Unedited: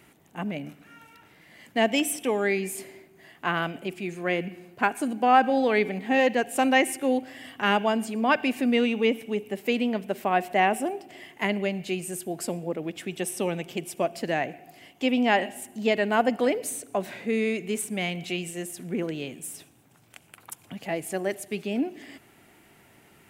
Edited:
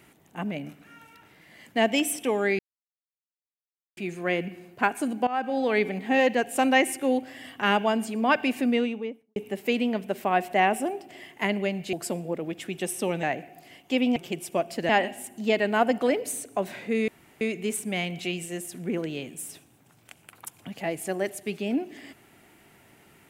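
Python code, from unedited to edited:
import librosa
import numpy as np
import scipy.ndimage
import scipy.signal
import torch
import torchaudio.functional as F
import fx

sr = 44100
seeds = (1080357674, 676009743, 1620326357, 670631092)

y = fx.studio_fade_out(x, sr, start_s=8.57, length_s=0.79)
y = fx.edit(y, sr, fx.silence(start_s=2.59, length_s=1.38),
    fx.fade_in_from(start_s=5.27, length_s=0.71, curve='qsin', floor_db=-18.0),
    fx.cut(start_s=11.93, length_s=0.38),
    fx.move(start_s=13.61, length_s=0.73, to_s=15.27),
    fx.insert_room_tone(at_s=17.46, length_s=0.33), tone=tone)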